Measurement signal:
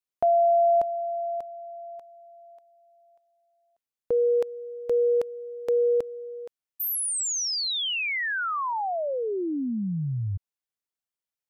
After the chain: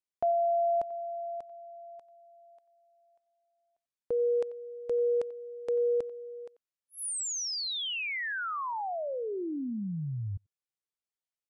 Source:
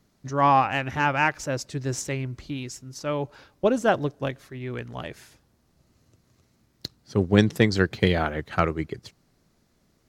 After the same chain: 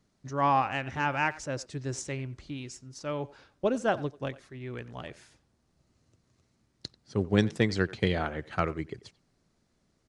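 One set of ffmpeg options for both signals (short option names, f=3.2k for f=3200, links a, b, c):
-filter_complex "[0:a]aresample=22050,aresample=44100,asplit=2[a][b];[b]adelay=90,highpass=300,lowpass=3.4k,asoftclip=type=hard:threshold=-10dB,volume=-18dB[c];[a][c]amix=inputs=2:normalize=0,volume=-6dB"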